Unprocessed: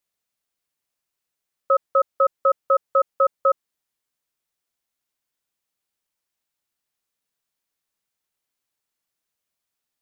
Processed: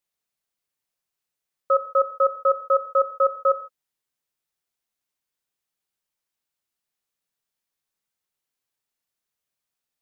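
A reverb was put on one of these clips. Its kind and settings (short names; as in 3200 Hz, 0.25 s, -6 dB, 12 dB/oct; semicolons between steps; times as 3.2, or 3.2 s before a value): non-linear reverb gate 0.18 s falling, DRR 8.5 dB; gain -3 dB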